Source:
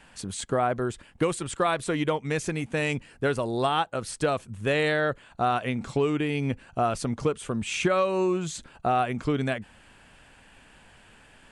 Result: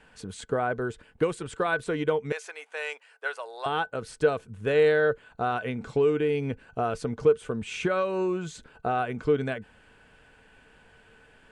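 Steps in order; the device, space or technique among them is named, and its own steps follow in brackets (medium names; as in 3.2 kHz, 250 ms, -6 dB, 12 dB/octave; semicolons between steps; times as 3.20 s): inside a helmet (treble shelf 5.8 kHz -9 dB; small resonant body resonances 450/1500 Hz, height 13 dB, ringing for 95 ms); 2.32–3.66 s: high-pass 690 Hz 24 dB/octave; trim -3.5 dB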